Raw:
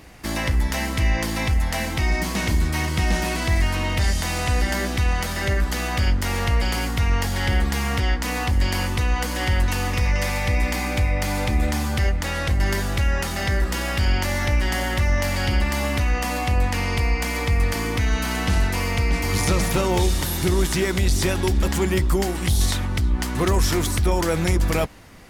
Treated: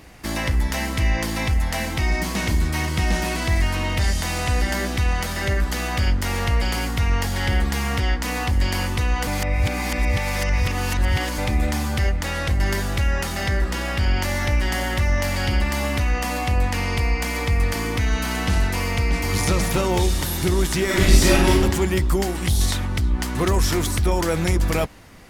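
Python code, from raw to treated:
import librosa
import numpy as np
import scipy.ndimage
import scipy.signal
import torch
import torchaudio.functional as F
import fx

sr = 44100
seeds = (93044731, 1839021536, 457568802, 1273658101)

y = fx.high_shelf(x, sr, hz=fx.line((13.48, 9900.0), (14.16, 4900.0)), db=-6.5, at=(13.48, 14.16), fade=0.02)
y = fx.reverb_throw(y, sr, start_s=20.85, length_s=0.73, rt60_s=0.84, drr_db=-6.0)
y = fx.edit(y, sr, fx.reverse_span(start_s=9.27, length_s=2.11), tone=tone)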